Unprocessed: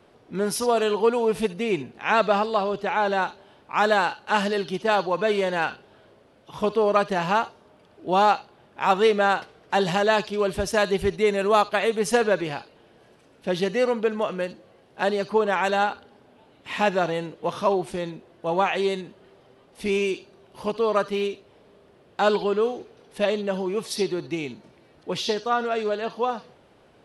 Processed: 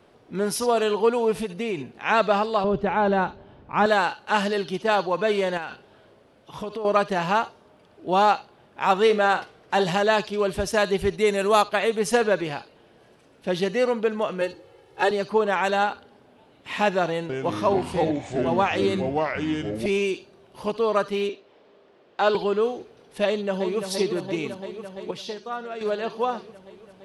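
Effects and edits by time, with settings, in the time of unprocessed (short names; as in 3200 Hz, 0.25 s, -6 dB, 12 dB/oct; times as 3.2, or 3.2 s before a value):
1.4–1.94 compressor, threshold -23 dBFS
2.64–3.86 RIAA curve playback
5.57–6.85 compressor, threshold -28 dBFS
9.05–9.85 doubler 48 ms -12.5 dB
11.18–11.62 high shelf 7900 Hz -> 5100 Hz +10 dB
14.41–15.11 comb 2.3 ms, depth 95%
17.1–19.86 echoes that change speed 0.192 s, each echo -4 st, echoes 3
21.29–22.35 three-band isolator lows -15 dB, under 230 Hz, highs -23 dB, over 6600 Hz
23.26–23.86 echo throw 0.34 s, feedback 80%, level -7.5 dB
25.11–25.81 gain -8.5 dB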